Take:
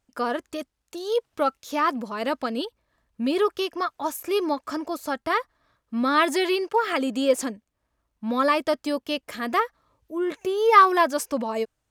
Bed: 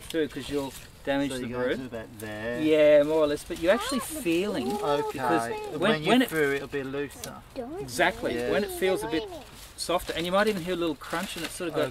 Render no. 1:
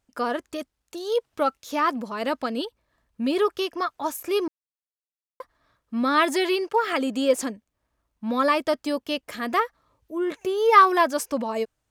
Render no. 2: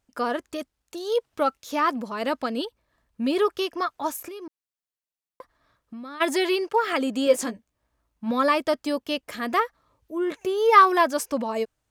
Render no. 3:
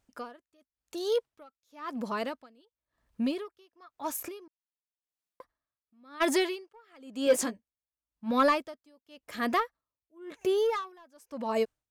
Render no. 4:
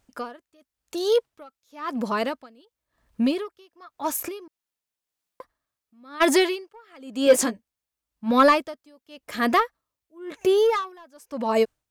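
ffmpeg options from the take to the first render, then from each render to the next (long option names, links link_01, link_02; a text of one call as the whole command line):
ffmpeg -i in.wav -filter_complex "[0:a]asplit=3[link_01][link_02][link_03];[link_01]atrim=end=4.48,asetpts=PTS-STARTPTS,afade=type=out:start_time=4.476:duration=0.004:curve=hsin[link_04];[link_02]atrim=start=4.48:end=5.4,asetpts=PTS-STARTPTS,volume=0[link_05];[link_03]atrim=start=5.4,asetpts=PTS-STARTPTS,afade=type=in:duration=0.004:curve=hsin[link_06];[link_04][link_05][link_06]concat=n=3:v=0:a=1" out.wav
ffmpeg -i in.wav -filter_complex "[0:a]asplit=3[link_01][link_02][link_03];[link_01]afade=type=out:start_time=4.27:duration=0.02[link_04];[link_02]acompressor=threshold=-35dB:ratio=16:attack=3.2:release=140:knee=1:detection=peak,afade=type=in:start_time=4.27:duration=0.02,afade=type=out:start_time=6.2:duration=0.02[link_05];[link_03]afade=type=in:start_time=6.2:duration=0.02[link_06];[link_04][link_05][link_06]amix=inputs=3:normalize=0,asettb=1/sr,asplit=3[link_07][link_08][link_09];[link_07]atrim=end=7.254[link_10];[link_08]atrim=start=7.25:end=8.31,asetpts=PTS-STARTPTS,afade=type=in:duration=0.004:curve=qsin,afade=type=out:start_time=1.056:duration=0.004:curve=qsin,asplit=2[link_11][link_12];[link_12]adelay=17,volume=-7dB[link_13];[link_11][link_13]amix=inputs=2:normalize=0,atrim=end_sample=46746[link_14];[link_09]atrim=start=8.306[link_15];[link_10][link_14]acrossfade=duration=0.004:curve1=hsin:curve2=qsin[link_16];[link_16][link_15]acrossfade=duration=0.004:curve1=qsin:curve2=hsin" out.wav
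ffmpeg -i in.wav -af "asoftclip=type=tanh:threshold=-13.5dB,aeval=exprs='val(0)*pow(10,-34*(0.5-0.5*cos(2*PI*0.95*n/s))/20)':channel_layout=same" out.wav
ffmpeg -i in.wav -af "volume=7.5dB" out.wav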